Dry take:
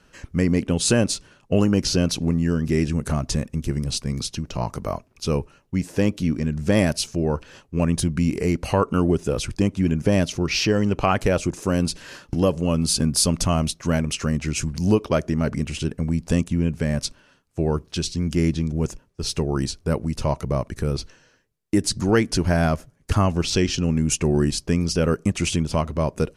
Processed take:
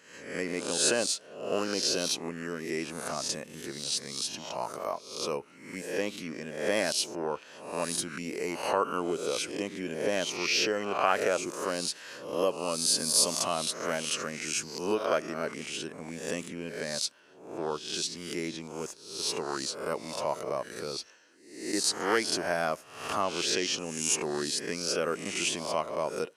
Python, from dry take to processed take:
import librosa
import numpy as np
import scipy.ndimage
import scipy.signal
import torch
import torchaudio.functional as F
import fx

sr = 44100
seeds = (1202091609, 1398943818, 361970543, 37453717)

y = fx.spec_swells(x, sr, rise_s=0.66)
y = scipy.signal.sosfilt(scipy.signal.butter(2, 450.0, 'highpass', fs=sr, output='sos'), y)
y = y * librosa.db_to_amplitude(-6.0)